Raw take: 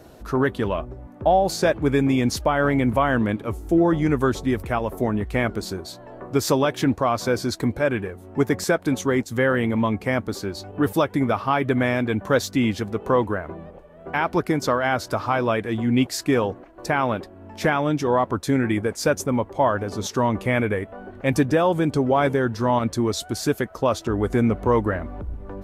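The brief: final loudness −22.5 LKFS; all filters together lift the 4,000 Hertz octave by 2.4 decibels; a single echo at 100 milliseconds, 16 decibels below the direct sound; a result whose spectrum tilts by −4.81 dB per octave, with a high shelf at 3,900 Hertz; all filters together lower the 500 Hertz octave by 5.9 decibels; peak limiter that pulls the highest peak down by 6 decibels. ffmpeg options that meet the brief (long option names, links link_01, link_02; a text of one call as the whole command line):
ffmpeg -i in.wav -af "equalizer=frequency=500:width_type=o:gain=-7.5,highshelf=frequency=3900:gain=-7,equalizer=frequency=4000:width_type=o:gain=7.5,alimiter=limit=-16dB:level=0:latency=1,aecho=1:1:100:0.158,volume=4dB" out.wav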